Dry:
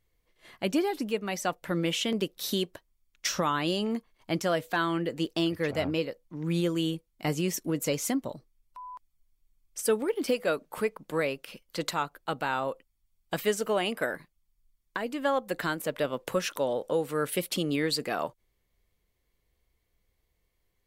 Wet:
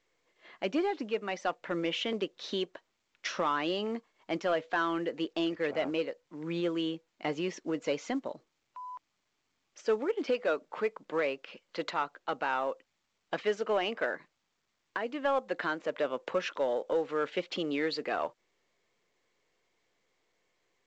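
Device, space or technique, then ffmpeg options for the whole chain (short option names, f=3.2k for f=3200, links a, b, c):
telephone: -af "highpass=310,lowpass=3.1k,asoftclip=type=tanh:threshold=-19dB" -ar 16000 -c:a pcm_mulaw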